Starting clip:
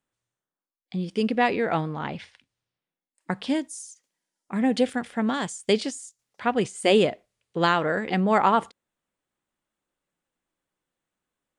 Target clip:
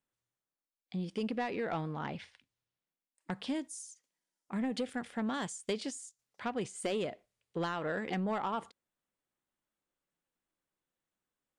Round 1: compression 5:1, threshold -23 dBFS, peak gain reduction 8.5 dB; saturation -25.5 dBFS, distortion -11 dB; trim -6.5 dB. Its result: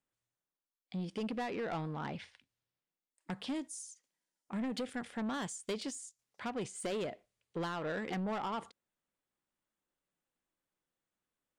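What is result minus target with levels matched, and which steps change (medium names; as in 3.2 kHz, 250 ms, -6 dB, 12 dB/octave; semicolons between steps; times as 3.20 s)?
saturation: distortion +7 dB
change: saturation -19 dBFS, distortion -19 dB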